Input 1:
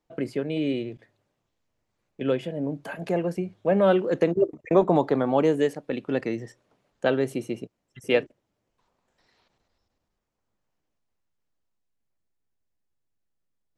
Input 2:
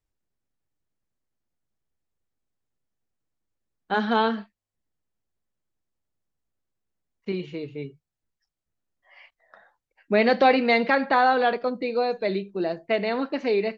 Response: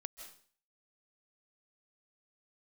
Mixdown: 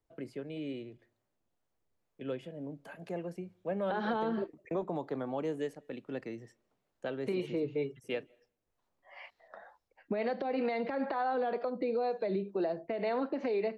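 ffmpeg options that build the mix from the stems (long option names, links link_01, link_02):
-filter_complex "[0:a]volume=-13.5dB,asplit=2[link_01][link_02];[link_02]volume=-19dB[link_03];[1:a]equalizer=frequency=620:width=0.52:gain=10.5,acompressor=threshold=-14dB:ratio=6,acrossover=split=450[link_04][link_05];[link_04]aeval=exprs='val(0)*(1-0.5/2+0.5/2*cos(2*PI*2.1*n/s))':channel_layout=same[link_06];[link_05]aeval=exprs='val(0)*(1-0.5/2-0.5/2*cos(2*PI*2.1*n/s))':channel_layout=same[link_07];[link_06][link_07]amix=inputs=2:normalize=0,volume=-1.5dB[link_08];[2:a]atrim=start_sample=2205[link_09];[link_03][link_09]afir=irnorm=-1:irlink=0[link_10];[link_01][link_08][link_10]amix=inputs=3:normalize=0,acrossover=split=240[link_11][link_12];[link_12]acompressor=threshold=-25dB:ratio=6[link_13];[link_11][link_13]amix=inputs=2:normalize=0,alimiter=level_in=0.5dB:limit=-24dB:level=0:latency=1:release=185,volume=-0.5dB"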